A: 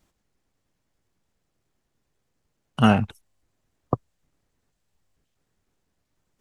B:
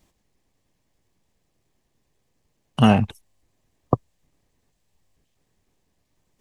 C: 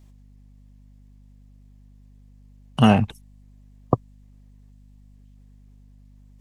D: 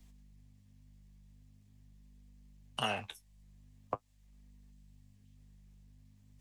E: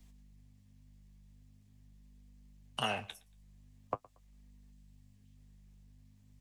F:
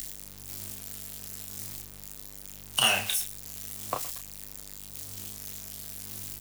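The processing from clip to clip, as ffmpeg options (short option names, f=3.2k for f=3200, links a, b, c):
-af "equalizer=f=1.4k:w=6:g=-10,alimiter=limit=-6dB:level=0:latency=1:release=234,volume=4.5dB"
-af "aeval=exprs='val(0)+0.00355*(sin(2*PI*50*n/s)+sin(2*PI*2*50*n/s)/2+sin(2*PI*3*50*n/s)/3+sin(2*PI*4*50*n/s)/4+sin(2*PI*5*50*n/s)/5)':c=same"
-filter_complex "[0:a]acrossover=split=110|420[a][b][c];[a]acompressor=threshold=-46dB:ratio=4[d];[b]acompressor=threshold=-49dB:ratio=4[e];[c]acompressor=threshold=-24dB:ratio=4[f];[d][e][f]amix=inputs=3:normalize=0,flanger=delay=4.2:depth=10:regen=-44:speed=0.44:shape=sinusoidal,acrossover=split=1600[g][h];[h]acontrast=71[i];[g][i]amix=inputs=2:normalize=0,volume=-5dB"
-af "aecho=1:1:116|232:0.0631|0.0196"
-filter_complex "[0:a]aeval=exprs='val(0)+0.5*0.00531*sgn(val(0))':c=same,crystalizer=i=8.5:c=0,asplit=2[a][b];[b]adelay=31,volume=-5dB[c];[a][c]amix=inputs=2:normalize=0"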